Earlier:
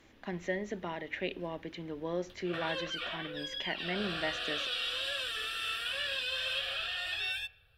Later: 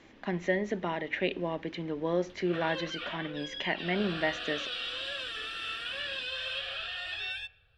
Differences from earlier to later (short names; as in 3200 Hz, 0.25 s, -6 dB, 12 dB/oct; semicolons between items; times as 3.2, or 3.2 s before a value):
speech +6.0 dB; master: add air absorption 74 m